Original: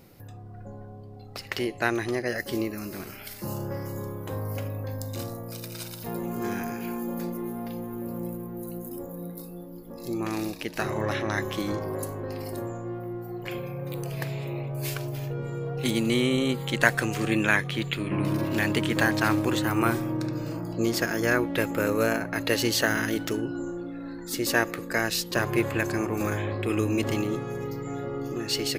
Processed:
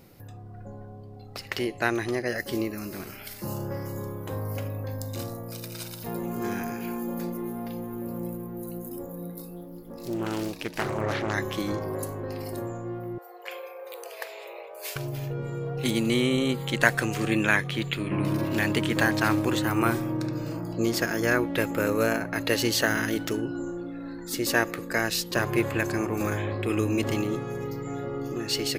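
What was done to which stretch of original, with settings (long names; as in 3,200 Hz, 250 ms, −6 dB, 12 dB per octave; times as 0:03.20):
0:09.54–0:11.34: highs frequency-modulated by the lows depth 0.5 ms
0:13.18–0:14.96: elliptic high-pass filter 450 Hz, stop band 50 dB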